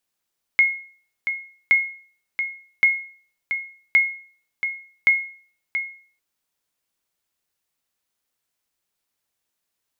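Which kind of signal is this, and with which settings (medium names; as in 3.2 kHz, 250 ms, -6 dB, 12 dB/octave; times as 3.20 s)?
sonar ping 2.16 kHz, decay 0.46 s, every 1.12 s, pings 5, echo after 0.68 s, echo -9 dB -8.5 dBFS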